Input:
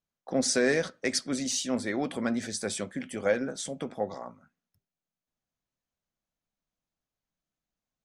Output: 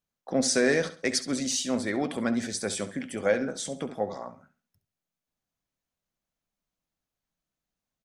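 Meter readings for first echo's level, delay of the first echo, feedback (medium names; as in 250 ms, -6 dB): -14.0 dB, 68 ms, 30%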